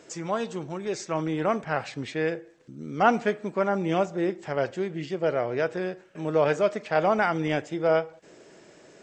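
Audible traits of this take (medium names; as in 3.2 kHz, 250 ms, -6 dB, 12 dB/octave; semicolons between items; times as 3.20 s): noise floor -54 dBFS; spectral tilt -5.0 dB/octave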